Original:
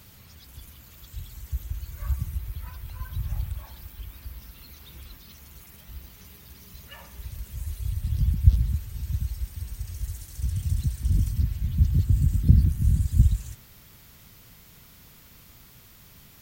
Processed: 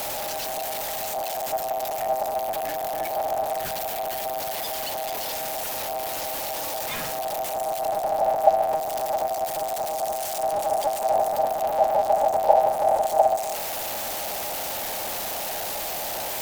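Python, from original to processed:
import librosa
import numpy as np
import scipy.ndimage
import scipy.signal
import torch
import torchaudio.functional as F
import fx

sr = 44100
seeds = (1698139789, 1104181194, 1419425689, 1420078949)

y = x + 0.5 * 10.0 ** (-21.5 / 20.0) * np.sign(x)
y = y * np.sin(2.0 * np.pi * 710.0 * np.arange(len(y)) / sr)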